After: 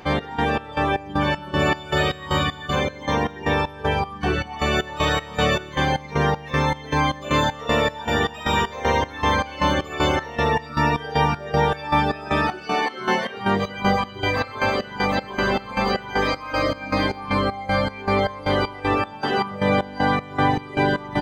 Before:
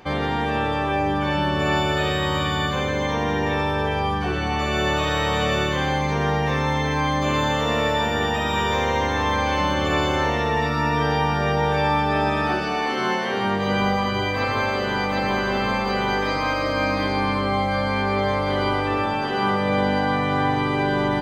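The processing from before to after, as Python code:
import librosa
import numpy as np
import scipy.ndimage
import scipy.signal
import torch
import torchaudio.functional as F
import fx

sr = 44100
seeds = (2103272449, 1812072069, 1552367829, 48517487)

y = fx.chopper(x, sr, hz=2.6, depth_pct=60, duty_pct=50)
y = fx.dereverb_blind(y, sr, rt60_s=1.2)
y = y * librosa.db_to_amplitude(4.0)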